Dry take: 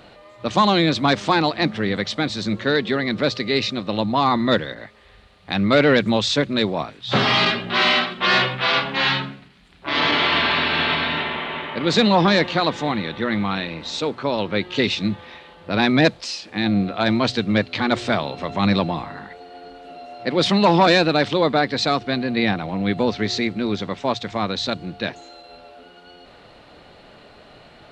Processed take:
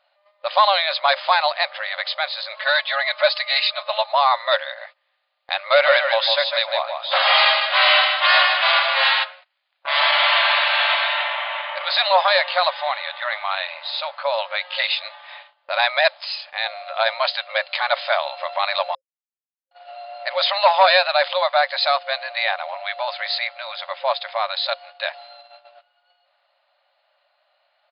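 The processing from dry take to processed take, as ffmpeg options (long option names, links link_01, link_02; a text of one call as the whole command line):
ffmpeg -i in.wav -filter_complex "[0:a]asettb=1/sr,asplit=3[link_01][link_02][link_03];[link_01]atrim=end=2.534[link_04];[link_02]atrim=start=2.53:end=4.15,asetpts=PTS-STARTPTS,afade=type=in:duration=0.004:curve=qsin,afade=type=out:start_time=1.616:duration=0.004:curve=qsin,aecho=1:1:4.7:0.96,atrim=end_sample=71442[link_05];[link_03]atrim=start=4.146[link_06];[link_04][link_05]acrossfade=duration=0.004:curve1=hsin:curve2=qsin[link_07];[link_07][link_06]acrossfade=duration=0.004:curve1=qsin:curve2=hsin,asplit=3[link_08][link_09][link_10];[link_08]afade=type=out:start_time=5.74:duration=0.02[link_11];[link_09]aecho=1:1:153|306|459:0.562|0.141|0.0351,afade=type=in:start_time=5.74:duration=0.02,afade=type=out:start_time=9.23:duration=0.02[link_12];[link_10]afade=type=in:start_time=9.23:duration=0.02[link_13];[link_11][link_12][link_13]amix=inputs=3:normalize=0,asplit=3[link_14][link_15][link_16];[link_14]atrim=end=18.95,asetpts=PTS-STARTPTS,afade=type=out:start_time=18.946:duration=0.004:curve=hsin[link_17];[link_15]atrim=start=18.95:end=19.71,asetpts=PTS-STARTPTS,volume=0[link_18];[link_16]atrim=start=19.71,asetpts=PTS-STARTPTS,afade=type=in:duration=0.004:curve=hsin[link_19];[link_17][link_18][link_19]concat=n=3:v=0:a=1,afftfilt=real='re*between(b*sr/4096,530,5100)':imag='im*between(b*sr/4096,530,5100)':win_size=4096:overlap=0.75,agate=range=-20dB:threshold=-43dB:ratio=16:detection=peak,volume=2.5dB" out.wav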